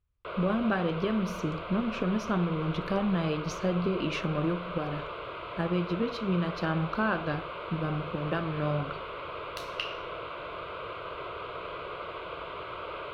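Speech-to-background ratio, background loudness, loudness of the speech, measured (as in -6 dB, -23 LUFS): 7.0 dB, -38.5 LUFS, -31.5 LUFS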